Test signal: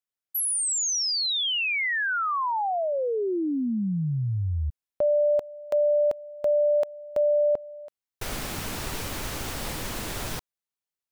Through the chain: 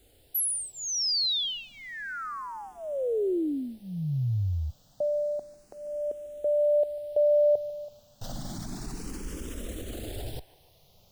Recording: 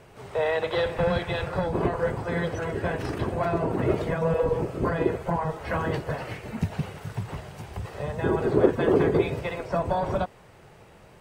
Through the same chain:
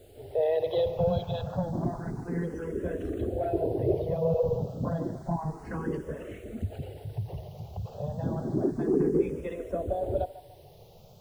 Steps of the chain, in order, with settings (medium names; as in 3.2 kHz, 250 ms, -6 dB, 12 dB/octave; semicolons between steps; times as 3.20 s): resonances exaggerated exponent 1.5; added noise pink -57 dBFS; high-order bell 1.5 kHz -9.5 dB; on a send: feedback echo behind a band-pass 146 ms, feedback 44%, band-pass 1.4 kHz, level -13 dB; on the sum: barber-pole phaser +0.3 Hz